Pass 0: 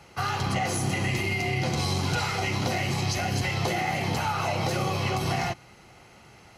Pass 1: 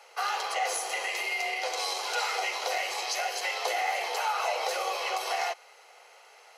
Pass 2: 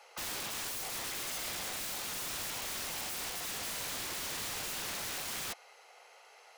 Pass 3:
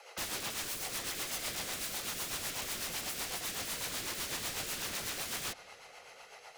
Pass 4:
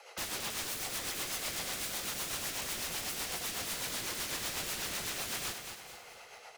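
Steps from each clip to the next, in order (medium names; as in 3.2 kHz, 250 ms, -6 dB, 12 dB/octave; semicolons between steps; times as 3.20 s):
Chebyshev high-pass 450 Hz, order 5
integer overflow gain 30.5 dB; trim -3.5 dB
compression, threshold -41 dBFS, peak gain reduction 4.5 dB; rotary cabinet horn 8 Hz; reverberation RT60 4.7 s, pre-delay 15 ms, DRR 19 dB; trim +7.5 dB
feedback delay 222 ms, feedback 47%, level -7.5 dB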